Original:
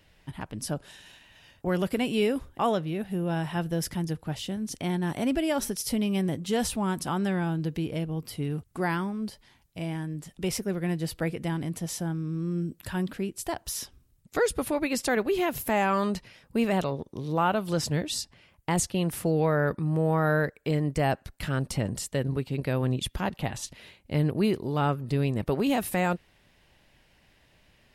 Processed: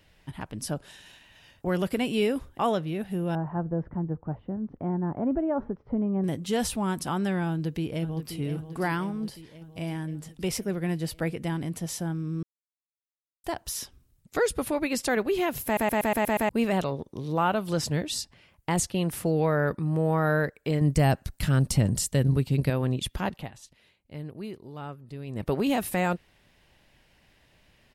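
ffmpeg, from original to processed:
ffmpeg -i in.wav -filter_complex "[0:a]asettb=1/sr,asplit=3[link_01][link_02][link_03];[link_01]atrim=end=3.354[link_04];[link_02]atrim=start=3.35:end=6.24,asetpts=PTS-STARTPTS,afade=type=in:duration=0.004:curve=qsin,afade=type=out:start_time=2.886:duration=0.004:curve=qsin,lowpass=frequency=1200:width=0.5412,lowpass=frequency=1200:width=1.3066[link_05];[link_03]atrim=start=6.236[link_06];[link_04][link_05]acrossfade=duration=0.004:curve1=hsin:curve2=qsin[link_07];[link_07][link_06]acrossfade=duration=0.004:curve1=qsin:curve2=hsin,asplit=2[link_08][link_09];[link_09]afade=type=in:start_time=7.49:duration=0.01,afade=type=out:start_time=8.35:duration=0.01,aecho=0:1:530|1060|1590|2120|2650|3180|3710|4240|4770:0.316228|0.205548|0.133606|0.0868441|0.0564486|0.0366916|0.0238495|0.0155022|0.0100764[link_10];[link_08][link_10]amix=inputs=2:normalize=0,asettb=1/sr,asplit=3[link_11][link_12][link_13];[link_11]atrim=end=20.814[link_14];[link_12]atrim=start=20.81:end=22.7,asetpts=PTS-STARTPTS,afade=type=in:duration=0.004:curve=qsin,afade=type=out:start_time=1.886:duration=0.004:curve=qsin,bass=frequency=250:gain=8,treble=frequency=4000:gain=7[link_15];[link_13]atrim=start=22.696[link_16];[link_14][link_15]acrossfade=duration=0.004:curve1=hsin:curve2=qsin[link_17];[link_17][link_16]acrossfade=duration=0.004:curve1=qsin:curve2=hsin,asplit=12[link_18][link_19][link_20][link_21][link_22][link_23][link_24][link_25][link_26][link_27][link_28][link_29];[link_18]atrim=end=12.43,asetpts=PTS-STARTPTS,afade=type=out:start_time=12.426:duration=0.004:curve=hsin[link_30];[link_19]atrim=start=12.43:end=13.44,asetpts=PTS-STARTPTS,volume=0[link_31];[link_20]atrim=start=13.44:end=15.772,asetpts=PTS-STARTPTS,afade=type=in:duration=0.004:curve=hsin[link_32];[link_21]atrim=start=15.648:end=15.772[link_33];[link_22]atrim=start=15.648:end=15.772[link_34];[link_23]atrim=start=15.648:end=15.772[link_35];[link_24]atrim=start=15.648:end=15.772[link_36];[link_25]atrim=start=15.648:end=15.772[link_37];[link_26]atrim=start=15.648:end=15.772[link_38];[link_27]atrim=start=16.488:end=23.51,asetpts=PTS-STARTPTS,afade=type=out:start_time=6.802:duration=0.22:silence=0.223872[link_39];[link_28]atrim=start=23.51:end=25.26,asetpts=PTS-STARTPTS,volume=-13dB[link_40];[link_29]atrim=start=25.26,asetpts=PTS-STARTPTS,afade=type=in:duration=0.22:silence=0.223872[link_41];[link_30][link_31][link_32]concat=n=3:v=0:a=1[link_42];[link_42][link_33]acrossfade=duration=0.004:curve1=hsin:curve2=hsin[link_43];[link_43][link_34]acrossfade=duration=0.004:curve1=hsin:curve2=hsin[link_44];[link_44][link_35]acrossfade=duration=0.004:curve1=hsin:curve2=hsin[link_45];[link_45][link_36]acrossfade=duration=0.004:curve1=hsin:curve2=hsin[link_46];[link_46][link_37]acrossfade=duration=0.004:curve1=hsin:curve2=hsin[link_47];[link_47][link_38]acrossfade=duration=0.004:curve1=hsin:curve2=hsin[link_48];[link_39][link_40][link_41]concat=n=3:v=0:a=1[link_49];[link_48][link_49]acrossfade=duration=0.004:curve1=hsin:curve2=hsin" out.wav

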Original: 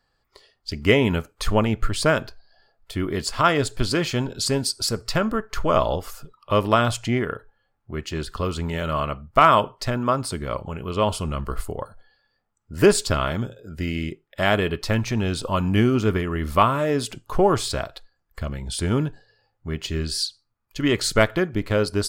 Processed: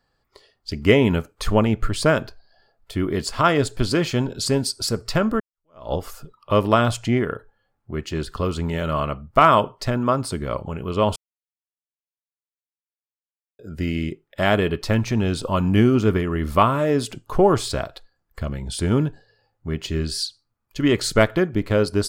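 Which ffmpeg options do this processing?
ffmpeg -i in.wav -filter_complex "[0:a]asplit=4[link_01][link_02][link_03][link_04];[link_01]atrim=end=5.4,asetpts=PTS-STARTPTS,afade=type=out:start_time=5.396:duration=0.004:curve=hsin[link_05];[link_02]atrim=start=5.4:end=11.16,asetpts=PTS-STARTPTS,afade=type=in:duration=0.53:curve=exp,afade=type=out:start_time=5.756:duration=0.004:curve=hsin[link_06];[link_03]atrim=start=11.16:end=13.59,asetpts=PTS-STARTPTS,volume=0[link_07];[link_04]atrim=start=13.59,asetpts=PTS-STARTPTS,afade=type=in:duration=0.004:curve=hsin[link_08];[link_05][link_06][link_07][link_08]concat=n=4:v=0:a=1,equalizer=frequency=240:width=0.33:gain=4,volume=-1dB" out.wav

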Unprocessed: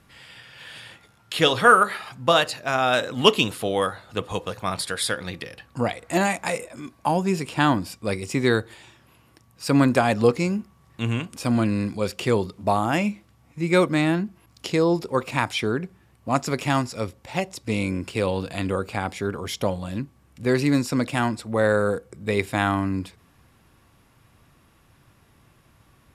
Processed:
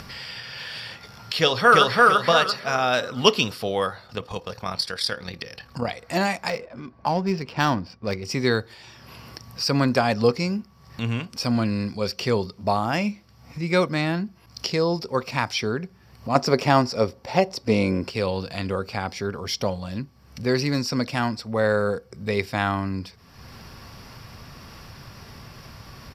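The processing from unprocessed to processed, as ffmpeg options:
ffmpeg -i in.wav -filter_complex "[0:a]asplit=2[link_01][link_02];[link_02]afade=type=in:start_time=1.38:duration=0.01,afade=type=out:start_time=1.99:duration=0.01,aecho=0:1:340|680|1020|1360|1700:0.944061|0.330421|0.115647|0.0404766|0.0141668[link_03];[link_01][link_03]amix=inputs=2:normalize=0,asettb=1/sr,asplit=3[link_04][link_05][link_06];[link_04]atrim=end=4.074[link_07];[link_05]atrim=start=4.07:end=5.88,asetpts=PTS-STARTPTS,afade=type=in:duration=0.004:curve=qsin,afade=type=out:start_time=1.806:duration=0.004:curve=qsin,tremolo=f=37:d=0.571[link_08];[link_06]atrim=start=5.876[link_09];[link_07][link_08]acrossfade=duration=0.004:curve1=hsin:curve2=qsin[link_10];[link_10][link_09]acrossfade=duration=0.004:curve1=qsin:curve2=hsin,asettb=1/sr,asplit=3[link_11][link_12][link_13];[link_11]atrim=end=6.494[link_14];[link_12]atrim=start=6.49:end=8.25,asetpts=PTS-STARTPTS,afade=type=in:duration=0.004:curve=qsin,afade=type=out:start_time=1.756:duration=0.004:curve=qsin,adynamicsmooth=sensitivity=4.5:basefreq=1600[link_15];[link_13]atrim=start=8.246[link_16];[link_14][link_15]acrossfade=duration=0.004:curve1=hsin:curve2=qsin[link_17];[link_17][link_16]acrossfade=duration=0.004:curve1=qsin:curve2=hsin,asettb=1/sr,asplit=3[link_18][link_19][link_20];[link_18]atrim=end=16.354[link_21];[link_19]atrim=start=16.35:end=18.1,asetpts=PTS-STARTPTS,afade=type=in:duration=0.004:curve=qsin,afade=type=out:start_time=1.746:duration=0.004:curve=qsin,equalizer=frequency=480:width_type=o:width=2.8:gain=9.5[link_22];[link_20]atrim=start=18.096[link_23];[link_21][link_22]acrossfade=duration=0.004:curve1=hsin:curve2=qsin[link_24];[link_24][link_23]acrossfade=duration=0.004:curve1=qsin:curve2=hsin,acompressor=mode=upward:threshold=-27dB:ratio=2.5,superequalizer=6b=0.562:14b=2.82:15b=0.501:16b=0.398,volume=-1dB" out.wav

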